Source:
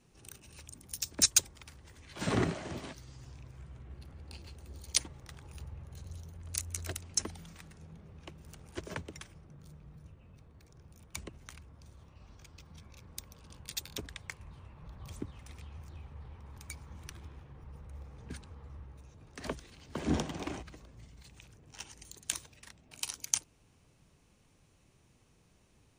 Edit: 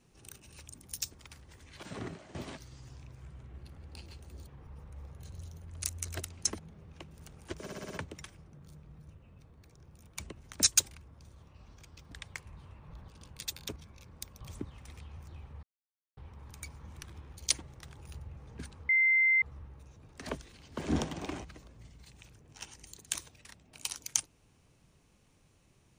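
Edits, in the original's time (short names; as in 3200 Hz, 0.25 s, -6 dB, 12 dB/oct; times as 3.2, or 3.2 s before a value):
1.14–1.5 move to 11.52
2.19–2.71 gain -11.5 dB
4.83–5.83 swap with 17.44–18.08
7.31–7.86 cut
8.87 stutter 0.06 s, 6 plays
12.72–13.37 swap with 14.05–15.02
16.24 insert silence 0.54 s
18.6 add tone 2080 Hz -22 dBFS 0.53 s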